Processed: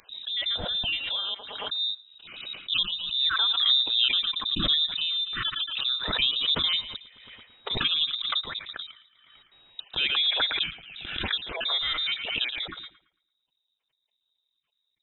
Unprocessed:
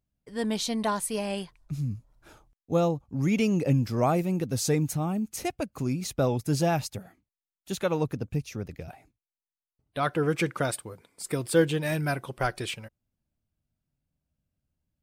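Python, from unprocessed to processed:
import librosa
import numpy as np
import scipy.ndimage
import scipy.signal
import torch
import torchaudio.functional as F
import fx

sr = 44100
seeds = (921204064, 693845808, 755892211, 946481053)

y = fx.spec_dropout(x, sr, seeds[0], share_pct=31)
y = fx.echo_thinned(y, sr, ms=112, feedback_pct=32, hz=430.0, wet_db=-14.0)
y = fx.freq_invert(y, sr, carrier_hz=3800)
y = fx.pre_swell(y, sr, db_per_s=44.0)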